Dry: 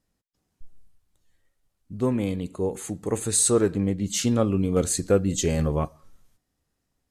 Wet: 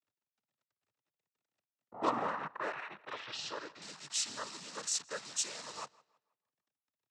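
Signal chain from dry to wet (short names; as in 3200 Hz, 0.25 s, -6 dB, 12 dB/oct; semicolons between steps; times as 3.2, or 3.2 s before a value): level-crossing sampler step -31.5 dBFS; low-pass opened by the level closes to 340 Hz, open at -21 dBFS; bell 1100 Hz +12.5 dB 1.4 oct; band-pass sweep 230 Hz -> 5400 Hz, 1.01–3.64; crackle 31/s -60 dBFS; in parallel at -3.5 dB: wavefolder -32 dBFS; on the sum: noise vocoder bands 12; 3.13–3.82 air absorption 190 m; on a send: tape echo 0.162 s, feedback 36%, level -22 dB, low-pass 4400 Hz; on the sum: gain -2.5 dB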